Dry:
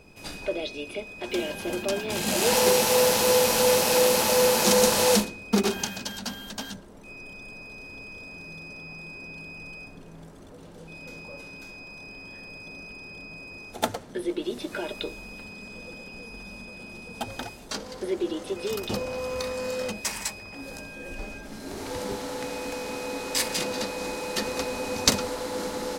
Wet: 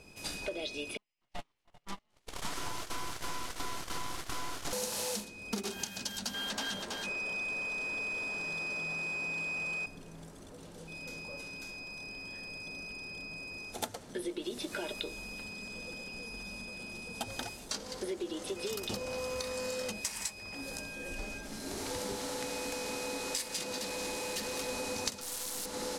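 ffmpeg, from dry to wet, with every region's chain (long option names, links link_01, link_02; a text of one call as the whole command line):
ffmpeg -i in.wav -filter_complex "[0:a]asettb=1/sr,asplit=3[link_01][link_02][link_03];[link_01]atrim=end=0.974[link_04];[link_02]atrim=start=0.97:end=4.73,asetpts=PTS-STARTPTS,afade=type=in:duration=0.004:curve=qsin,afade=type=out:start_time=3.756:duration=0.004:curve=qsin,lowpass=frequency=2000:poles=1,agate=range=-41dB:threshold=-26dB:ratio=16:release=100:detection=peak,aeval=exprs='abs(val(0))':channel_layout=same[link_05];[link_03]atrim=start=4.726[link_06];[link_04][link_05]acrossfade=duration=0.004:curve1=hsin:curve2=qsin[link_07];[link_07][link_06]acrossfade=duration=0.004:curve1=qsin:curve2=hsin,asettb=1/sr,asplit=3[link_08][link_09][link_10];[link_08]atrim=end=6.344[link_11];[link_09]atrim=start=6.34:end=9.86,asetpts=PTS-STARTPTS,afade=type=in:duration=0.004:curve=qsin,afade=type=out:start_time=3.516:duration=0.004:curve=qsin,asplit=2[link_12][link_13];[link_13]highpass=frequency=720:poles=1,volume=20dB,asoftclip=type=tanh:threshold=-20dB[link_14];[link_12][link_14]amix=inputs=2:normalize=0,lowpass=frequency=2200:poles=1,volume=-6dB,aecho=1:1:325:0.501,atrim=end_sample=155232[link_15];[link_10]atrim=start=9.856[link_16];[link_11][link_15]acrossfade=duration=0.004:curve1=hsin:curve2=qsin[link_17];[link_17][link_16]acrossfade=duration=0.004:curve1=qsin:curve2=hsin,asettb=1/sr,asplit=3[link_18][link_19][link_20];[link_18]atrim=end=23.784[link_21];[link_19]atrim=start=23.78:end=24.69,asetpts=PTS-STARTPTS,afade=type=in:duration=0.004:curve=qsin,afade=type=out:start_time=0.906:duration=0.004:curve=qsin,bandreject=frequency=1400:width=9.4,asoftclip=type=hard:threshold=-31dB[link_22];[link_20]atrim=start=24.686[link_23];[link_21][link_22]acrossfade=duration=0.004:curve1=hsin:curve2=qsin[link_24];[link_24][link_23]acrossfade=duration=0.004:curve1=qsin:curve2=hsin,asettb=1/sr,asplit=3[link_25][link_26][link_27];[link_25]atrim=end=25.214[link_28];[link_26]atrim=start=25.21:end=25.66,asetpts=PTS-STARTPTS,afade=type=in:duration=0.004:curve=qsin,afade=type=out:start_time=0.446:duration=0.004:curve=qsin,acrusher=bits=3:dc=4:mix=0:aa=0.000001,highshelf=frequency=3900:gain=11.5[link_29];[link_27]atrim=start=25.656[link_30];[link_28][link_29]acrossfade=duration=0.004:curve1=hsin:curve2=qsin[link_31];[link_31][link_30]acrossfade=duration=0.004:curve1=qsin:curve2=hsin,lowpass=12000,highshelf=frequency=4000:gain=9.5,acompressor=threshold=-29dB:ratio=10,volume=-4dB" out.wav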